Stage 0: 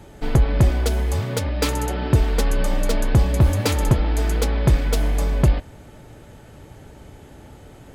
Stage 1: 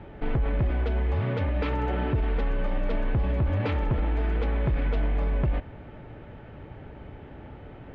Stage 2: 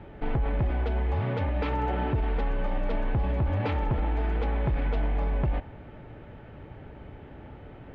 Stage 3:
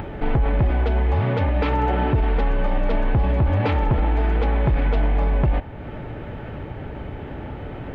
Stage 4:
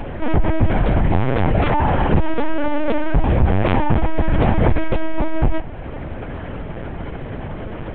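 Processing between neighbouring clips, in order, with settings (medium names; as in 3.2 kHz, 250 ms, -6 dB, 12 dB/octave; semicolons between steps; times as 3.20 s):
low-pass 2.8 kHz 24 dB/octave; peak limiter -19 dBFS, peak gain reduction 10.5 dB
dynamic bell 820 Hz, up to +6 dB, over -51 dBFS, Q 3.8; trim -1.5 dB
upward compressor, threshold -32 dBFS; trim +7.5 dB
on a send at -16.5 dB: reverberation RT60 0.80 s, pre-delay 50 ms; on the sum: LPC vocoder at 8 kHz pitch kept; trim +4 dB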